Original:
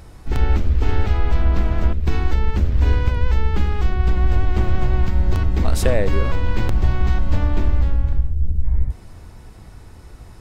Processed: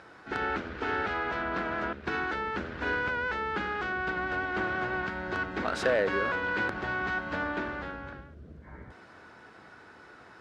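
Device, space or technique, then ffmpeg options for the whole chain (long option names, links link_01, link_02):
intercom: -af "highpass=310,lowpass=4000,equalizer=frequency=1500:width_type=o:width=0.48:gain=11.5,asoftclip=type=tanh:threshold=-13dB,volume=-3dB"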